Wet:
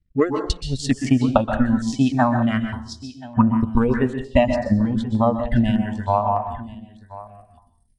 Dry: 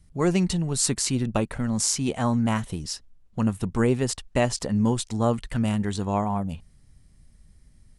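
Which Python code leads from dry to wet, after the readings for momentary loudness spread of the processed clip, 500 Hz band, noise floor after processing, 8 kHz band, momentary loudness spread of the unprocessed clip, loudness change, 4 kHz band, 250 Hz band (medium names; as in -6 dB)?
16 LU, +5.5 dB, -60 dBFS, under -10 dB, 8 LU, +4.5 dB, -1.5 dB, +6.0 dB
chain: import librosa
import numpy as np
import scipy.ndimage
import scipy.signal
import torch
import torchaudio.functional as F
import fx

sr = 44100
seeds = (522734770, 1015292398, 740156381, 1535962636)

p1 = fx.filter_sweep_lowpass(x, sr, from_hz=2800.0, to_hz=6600.0, start_s=6.17, end_s=6.88, q=0.89)
p2 = fx.dynamic_eq(p1, sr, hz=120.0, q=0.83, threshold_db=-38.0, ratio=4.0, max_db=-5)
p3 = fx.over_compress(p2, sr, threshold_db=-26.0, ratio=-1.0)
p4 = p2 + F.gain(torch.from_numpy(p3), 0.0).numpy()
p5 = fx.noise_reduce_blind(p4, sr, reduce_db=22)
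p6 = fx.transient(p5, sr, attack_db=11, sustain_db=-10)
p7 = p6 + fx.echo_single(p6, sr, ms=1031, db=-18.0, dry=0)
p8 = fx.rev_plate(p7, sr, seeds[0], rt60_s=0.51, hf_ratio=0.85, predelay_ms=115, drr_db=6.5)
y = fx.filter_held_notch(p8, sr, hz=3.3, low_hz=920.0, high_hz=5000.0)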